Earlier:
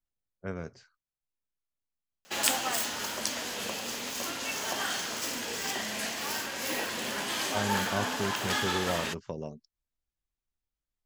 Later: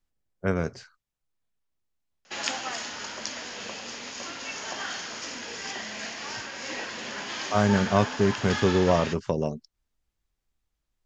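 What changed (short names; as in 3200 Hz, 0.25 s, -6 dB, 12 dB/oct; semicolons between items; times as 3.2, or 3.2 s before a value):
speech +11.0 dB; background: add rippled Chebyshev low-pass 7000 Hz, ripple 3 dB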